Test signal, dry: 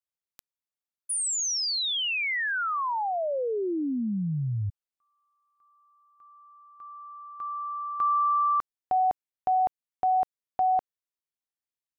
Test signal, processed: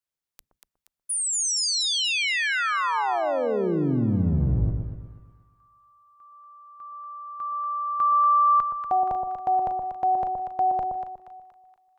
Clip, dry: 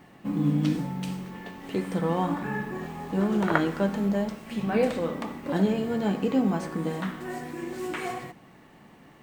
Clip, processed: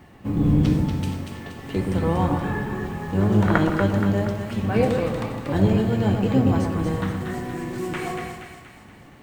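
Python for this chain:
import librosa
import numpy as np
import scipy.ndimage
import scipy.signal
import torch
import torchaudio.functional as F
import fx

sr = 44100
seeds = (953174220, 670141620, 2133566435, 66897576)

y = fx.octave_divider(x, sr, octaves=1, level_db=0.0)
y = fx.echo_split(y, sr, split_hz=1100.0, low_ms=121, high_ms=237, feedback_pct=52, wet_db=-5.0)
y = F.gain(torch.from_numpy(y), 2.0).numpy()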